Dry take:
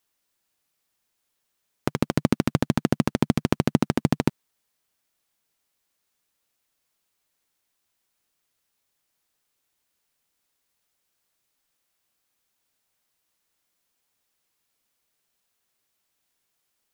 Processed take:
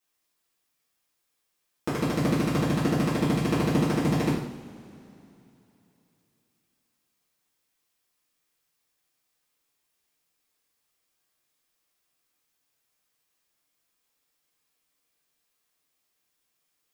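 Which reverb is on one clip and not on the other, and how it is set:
coupled-rooms reverb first 0.64 s, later 3.2 s, from −20 dB, DRR −10 dB
level −10.5 dB

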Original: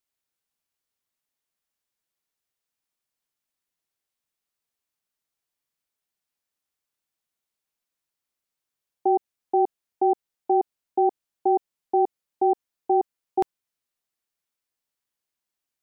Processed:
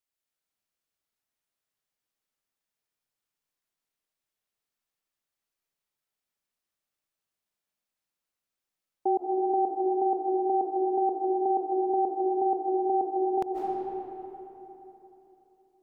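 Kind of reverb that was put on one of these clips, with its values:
comb and all-pass reverb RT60 3.5 s, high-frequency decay 0.55×, pre-delay 115 ms, DRR −2 dB
level −5 dB

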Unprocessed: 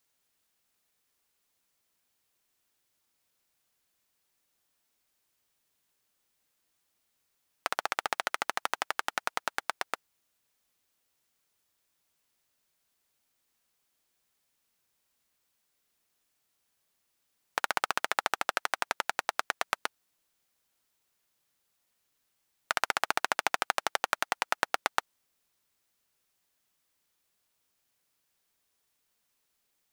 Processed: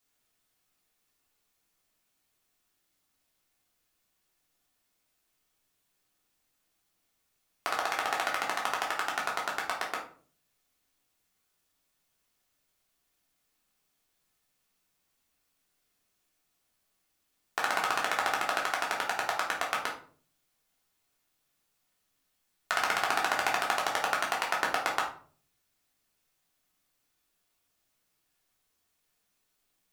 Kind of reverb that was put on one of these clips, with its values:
rectangular room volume 380 cubic metres, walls furnished, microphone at 3.3 metres
level −4 dB

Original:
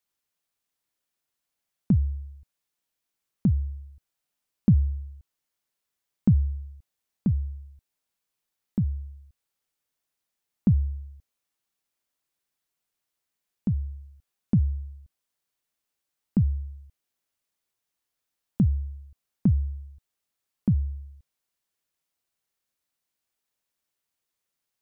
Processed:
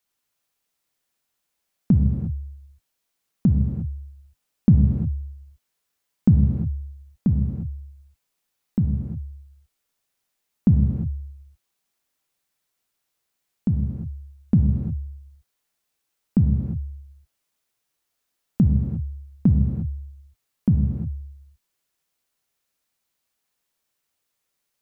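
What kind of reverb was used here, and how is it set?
reverb whose tail is shaped and stops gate 380 ms flat, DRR 2.5 dB
level +4 dB

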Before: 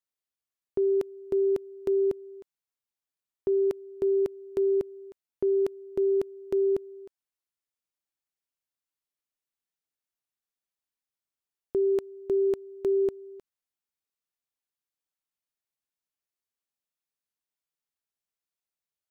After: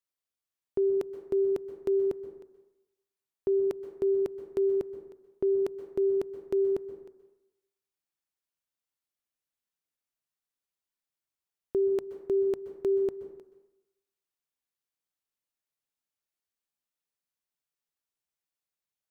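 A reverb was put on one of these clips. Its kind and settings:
dense smooth reverb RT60 0.87 s, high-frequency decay 0.45×, pre-delay 115 ms, DRR 11 dB
level −1 dB

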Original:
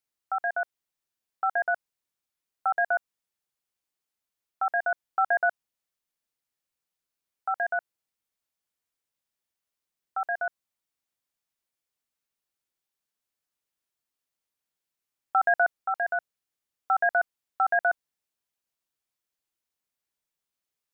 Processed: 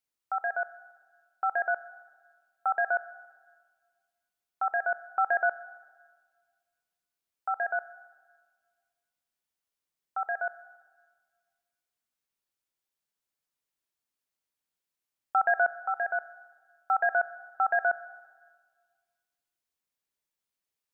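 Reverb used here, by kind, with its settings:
dense smooth reverb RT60 1.6 s, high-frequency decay 0.9×, DRR 15.5 dB
level −2 dB

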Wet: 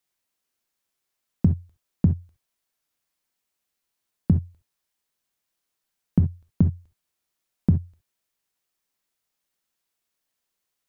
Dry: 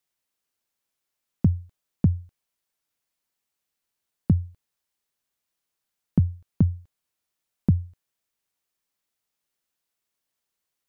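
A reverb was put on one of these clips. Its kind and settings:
reverb whose tail is shaped and stops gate 90 ms flat, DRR 7 dB
level +1 dB

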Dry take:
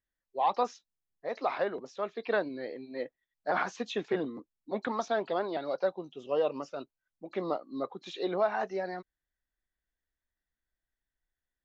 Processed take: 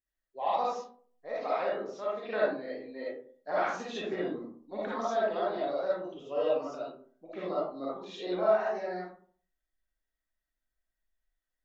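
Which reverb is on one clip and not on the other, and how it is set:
comb and all-pass reverb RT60 0.5 s, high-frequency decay 0.45×, pre-delay 15 ms, DRR −7.5 dB
level −8.5 dB

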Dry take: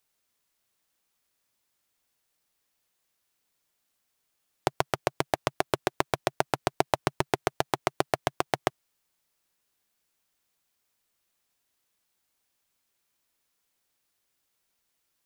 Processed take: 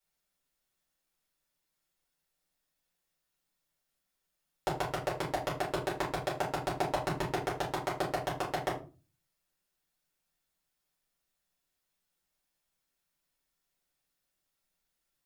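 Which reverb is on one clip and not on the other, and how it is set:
rectangular room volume 150 cubic metres, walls furnished, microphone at 4.5 metres
level −14 dB

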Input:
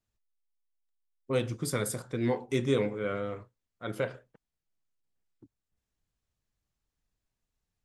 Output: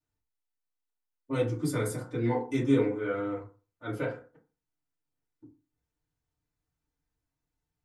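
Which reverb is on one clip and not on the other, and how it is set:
feedback delay network reverb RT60 0.35 s, low-frequency decay 1.05×, high-frequency decay 0.4×, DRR −8 dB
level −9 dB

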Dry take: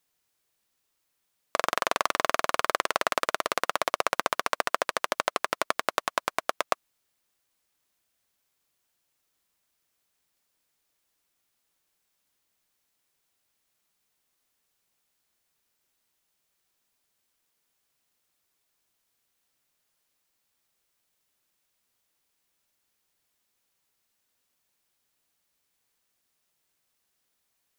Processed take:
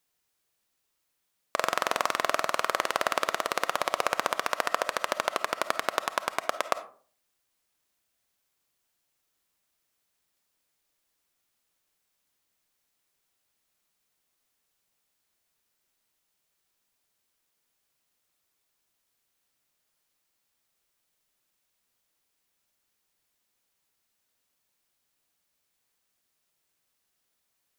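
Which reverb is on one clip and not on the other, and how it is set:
comb and all-pass reverb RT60 0.46 s, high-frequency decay 0.45×, pre-delay 10 ms, DRR 11.5 dB
level −1 dB

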